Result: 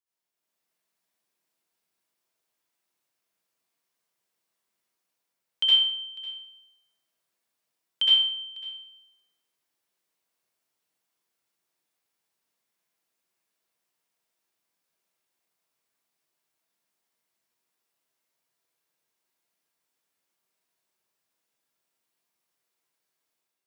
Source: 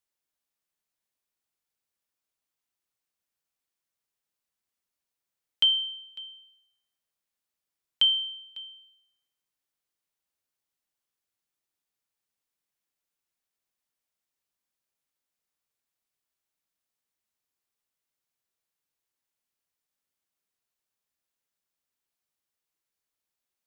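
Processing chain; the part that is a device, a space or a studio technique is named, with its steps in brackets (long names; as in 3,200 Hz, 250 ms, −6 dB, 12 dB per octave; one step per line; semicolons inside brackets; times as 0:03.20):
far laptop microphone (convolution reverb RT60 0.80 s, pre-delay 61 ms, DRR −9.5 dB; high-pass filter 150 Hz 12 dB per octave; automatic gain control gain up to 7 dB)
level −9 dB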